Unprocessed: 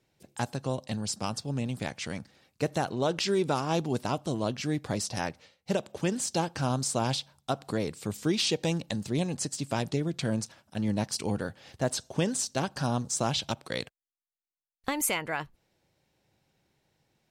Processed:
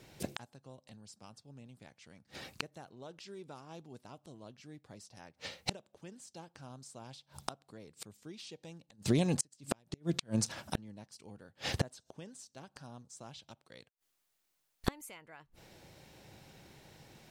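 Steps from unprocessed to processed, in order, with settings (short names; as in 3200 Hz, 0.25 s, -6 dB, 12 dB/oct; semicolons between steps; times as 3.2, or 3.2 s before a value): 8.82–10.78 compressor 16:1, threshold -40 dBFS, peak gain reduction 17 dB; flipped gate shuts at -33 dBFS, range -37 dB; gain +15.5 dB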